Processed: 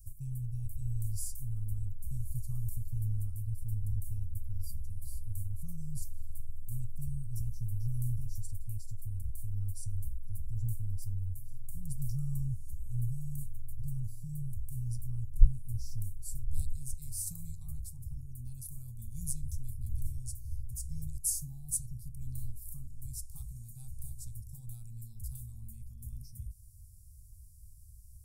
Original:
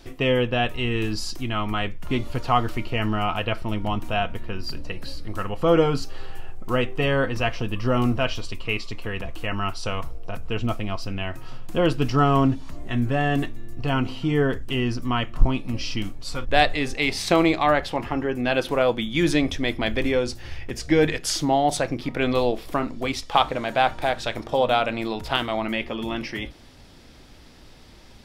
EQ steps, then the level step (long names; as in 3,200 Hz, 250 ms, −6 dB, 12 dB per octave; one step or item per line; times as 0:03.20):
inverse Chebyshev band-stop filter 300–3,300 Hz, stop band 60 dB
low-shelf EQ 79 Hz −9 dB
+5.0 dB